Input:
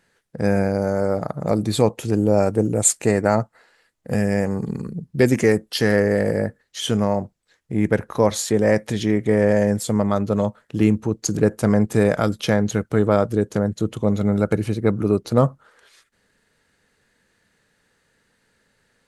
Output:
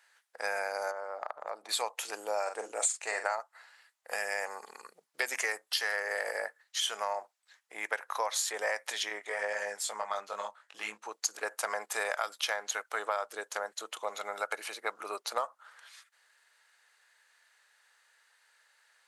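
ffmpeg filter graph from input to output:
-filter_complex "[0:a]asettb=1/sr,asplit=3[s0][s1][s2];[s0]atrim=end=0.914[s3];[s1]atrim=start=0.91:end=1.69,asetpts=PTS-STARTPTS,afade=t=in:d=0.004:c=qsin,afade=t=out:st=0.776:d=0.004:c=qsin,lowpass=f=1100:p=1,acompressor=threshold=0.0794:ratio=4:attack=3.2:release=140:knee=1:detection=peak[s4];[s2]atrim=start=1.686[s5];[s3][s4]acrossfade=d=0.004:c1=hsin:c2=qsin[s6];[s6][s5]acrossfade=d=0.004:c1=qsin:c2=hsin,asettb=1/sr,asplit=3[s7][s8][s9];[s7]atrim=end=2.434[s10];[s8]atrim=start=2.43:end=3.33,asetpts=PTS-STARTPTS,afade=t=in:d=0.004:c=qsin,afade=t=out:st=0.896:d=0.004:c=qsin,lowpass=f=9300:w=0.5412,lowpass=f=9300:w=1.3066,asplit=2[s11][s12];[s12]adelay=43,volume=0.376[s13];[s11][s13]amix=inputs=2:normalize=0,atrim=end_sample=39690[s14];[s9]atrim=start=3.326[s15];[s10][s14]acrossfade=d=0.004:c1=hsin:c2=qsin[s16];[s16][s15]acrossfade=d=0.004:c1=qsin:c2=hsin,asettb=1/sr,asplit=3[s17][s18][s19];[s17]atrim=end=9.094[s20];[s18]atrim=start=9.09:end=11.07,asetpts=PTS-STARTPTS,afade=t=in:d=0.004:c=qsin,afade=t=out:st=1.976:d=0.004:c=qsin,lowpass=10000,asubboost=boost=7.5:cutoff=170,flanger=delay=18.5:depth=2.1:speed=2.1[s21];[s19]atrim=start=11.066[s22];[s20][s21]acrossfade=d=0.004:c1=hsin:c2=qsin[s23];[s23][s22]acrossfade=d=0.004:c1=qsin:c2=hsin,highpass=f=780:w=0.5412,highpass=f=780:w=1.3066,acompressor=threshold=0.0398:ratio=6"

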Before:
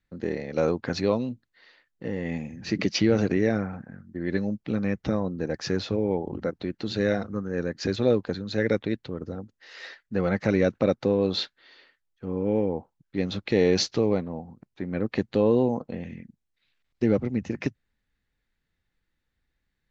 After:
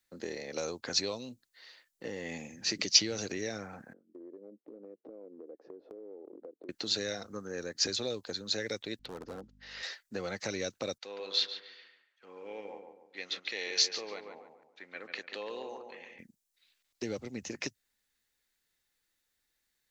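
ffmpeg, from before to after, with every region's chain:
-filter_complex "[0:a]asettb=1/sr,asplit=3[s0][s1][s2];[s0]atrim=end=3.934[s3];[s1]atrim=start=3.93:end=6.69,asetpts=PTS-STARTPTS,afade=t=in:d=0.004:c=qsin,afade=t=out:st=2.756:d=0.004:c=qsin,asuperpass=centerf=390:order=4:qfactor=1.5,acompressor=threshold=0.0112:ratio=10:attack=3.2:release=140:knee=1:detection=peak[s4];[s2]atrim=start=6.686[s5];[s3][s4]acrossfade=d=0.004:c1=hsin:c2=qsin[s6];[s6][s5]acrossfade=d=0.004:c1=qsin:c2=hsin,asettb=1/sr,asplit=3[s7][s8][s9];[s7]atrim=end=8.994[s10];[s8]atrim=start=8.99:end=9.83,asetpts=PTS-STARTPTS,afade=t=in:d=0.004:c=qsin,afade=t=out:st=0.836:d=0.004:c=qsin,lowpass=3600,aeval=exprs='val(0)+0.00501*(sin(2*PI*50*n/s)+sin(2*PI*2*50*n/s)/2+sin(2*PI*3*50*n/s)/3+sin(2*PI*4*50*n/s)/4+sin(2*PI*5*50*n/s)/5)':c=same,volume=33.5,asoftclip=hard,volume=0.0299[s11];[s9]atrim=start=9.826[s12];[s10][s11]acrossfade=d=0.004:c1=hsin:c2=qsin[s13];[s13][s12]acrossfade=d=0.004:c1=qsin:c2=hsin,asettb=1/sr,asplit=3[s14][s15][s16];[s14]atrim=end=10.984[s17];[s15]atrim=start=10.98:end=16.19,asetpts=PTS-STARTPTS,afade=t=in:d=0.004:c=qsin,afade=t=out:st=5.206:d=0.004:c=qsin,bandpass=f=2200:t=q:w=1.1,asplit=2[s18][s19];[s19]adelay=142,lowpass=f=1900:p=1,volume=0.501,asplit=2[s20][s21];[s21]adelay=142,lowpass=f=1900:p=1,volume=0.42,asplit=2[s22][s23];[s23]adelay=142,lowpass=f=1900:p=1,volume=0.42,asplit=2[s24][s25];[s25]adelay=142,lowpass=f=1900:p=1,volume=0.42,asplit=2[s26][s27];[s27]adelay=142,lowpass=f=1900:p=1,volume=0.42[s28];[s18][s20][s22][s24][s26][s28]amix=inputs=6:normalize=0,atrim=end_sample=229761[s29];[s16]atrim=start=16.186[s30];[s17][s29]acrossfade=d=0.004:c1=hsin:c2=qsin[s31];[s31][s30]acrossfade=d=0.004:c1=qsin:c2=hsin,bass=f=250:g=-14,treble=f=4000:g=15,acrossover=split=120|3000[s32][s33][s34];[s33]acompressor=threshold=0.0178:ratio=3[s35];[s32][s35][s34]amix=inputs=3:normalize=0,volume=0.794"

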